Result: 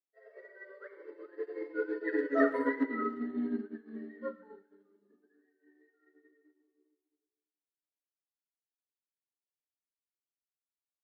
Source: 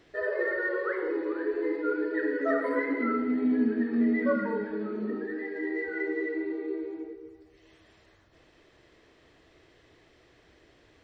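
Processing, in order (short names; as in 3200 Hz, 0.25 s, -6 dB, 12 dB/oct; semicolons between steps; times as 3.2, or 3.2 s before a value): Doppler pass-by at 2.36, 21 m/s, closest 20 m; brick-wall FIR high-pass 190 Hz; notch 2400 Hz, Q 8.7; comb 7.1 ms, depth 38%; speakerphone echo 0.11 s, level -18 dB; upward expander 2.5:1, over -50 dBFS; gain +2 dB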